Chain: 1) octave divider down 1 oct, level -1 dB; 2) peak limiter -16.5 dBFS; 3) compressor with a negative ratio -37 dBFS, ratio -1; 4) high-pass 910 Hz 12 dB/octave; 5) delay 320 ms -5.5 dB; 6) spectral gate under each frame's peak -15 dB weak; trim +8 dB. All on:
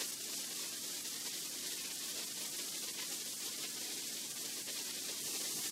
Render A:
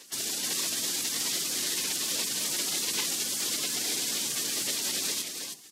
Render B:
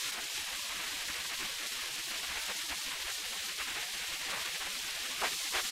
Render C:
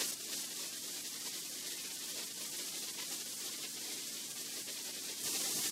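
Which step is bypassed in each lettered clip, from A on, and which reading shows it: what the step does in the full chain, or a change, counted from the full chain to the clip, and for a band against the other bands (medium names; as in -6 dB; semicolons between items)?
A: 3, loudness change +11.5 LU; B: 4, 1 kHz band +10.0 dB; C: 2, mean gain reduction 3.5 dB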